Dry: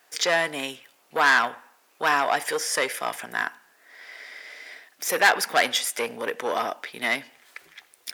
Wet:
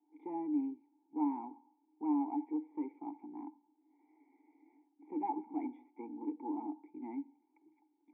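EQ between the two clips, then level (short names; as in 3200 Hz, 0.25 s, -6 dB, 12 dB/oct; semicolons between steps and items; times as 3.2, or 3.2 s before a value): vocal tract filter u; vowel filter u; high shelf 3500 Hz +11.5 dB; +9.5 dB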